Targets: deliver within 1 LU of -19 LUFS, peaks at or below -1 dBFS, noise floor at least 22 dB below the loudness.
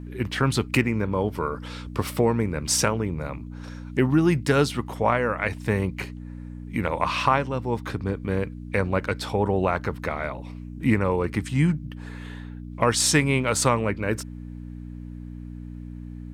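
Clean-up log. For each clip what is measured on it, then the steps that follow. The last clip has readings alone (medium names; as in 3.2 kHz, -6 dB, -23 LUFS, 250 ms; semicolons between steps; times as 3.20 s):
hum 60 Hz; highest harmonic 300 Hz; hum level -35 dBFS; loudness -24.5 LUFS; peak level -6.0 dBFS; loudness target -19.0 LUFS
-> de-hum 60 Hz, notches 5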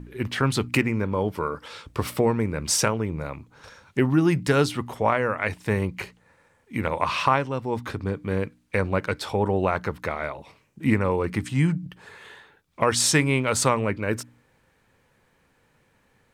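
hum not found; loudness -25.0 LUFS; peak level -6.0 dBFS; loudness target -19.0 LUFS
-> trim +6 dB; peak limiter -1 dBFS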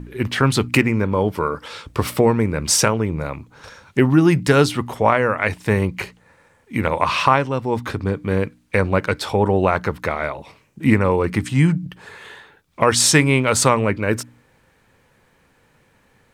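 loudness -19.0 LUFS; peak level -1.0 dBFS; noise floor -59 dBFS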